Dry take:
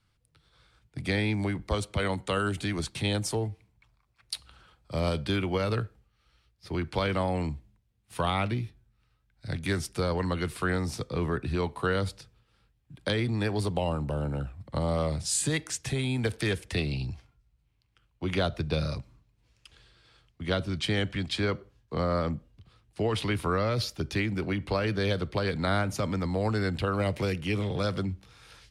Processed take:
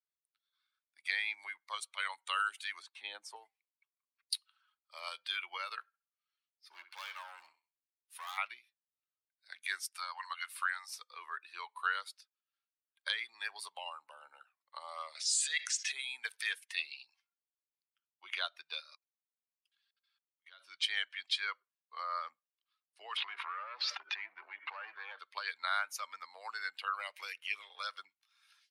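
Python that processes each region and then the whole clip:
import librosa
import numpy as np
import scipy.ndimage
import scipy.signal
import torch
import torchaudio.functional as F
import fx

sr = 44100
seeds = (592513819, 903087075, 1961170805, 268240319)

y = fx.chain(x, sr, fx.highpass(hz=190.0, slope=12),
    fx.tilt_eq(slope=-4.0), at=(2.82, 3.36))
y = fx.chain(y, sr, fx.echo_feedback(ms=65, feedback_pct=44, wet_db=-12),
    fx.clip_hard(threshold_db=-30.5), at=(5.81, 8.38))
y = fx.chain(y, sr, fx.highpass(hz=640.0, slope=24),
    fx.band_squash(depth_pct=40), at=(9.95, 10.96))
y = fx.chain(y, sr, fx.bandpass_edges(low_hz=520.0, high_hz=6700.0),
    fx.peak_eq(hz=960.0, db=-14.0, octaves=0.68),
    fx.env_flatten(amount_pct=70), at=(15.15, 15.92))
y = fx.chain(y, sr, fx.highpass(hz=240.0, slope=12),
    fx.level_steps(step_db=21), at=(18.81, 20.6))
y = fx.chain(y, sr, fx.clip_hard(threshold_db=-28.5),
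    fx.bandpass_edges(low_hz=230.0, high_hz=2100.0),
    fx.env_flatten(amount_pct=100), at=(23.17, 25.19))
y = fx.bin_expand(y, sr, power=1.5)
y = scipy.signal.sosfilt(scipy.signal.butter(4, 1100.0, 'highpass', fs=sr, output='sos'), y)
y = y * 10.0 ** (1.5 / 20.0)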